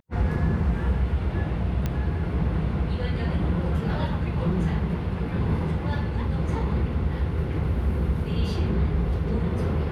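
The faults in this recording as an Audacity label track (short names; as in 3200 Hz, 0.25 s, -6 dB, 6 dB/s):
1.860000	1.860000	pop -14 dBFS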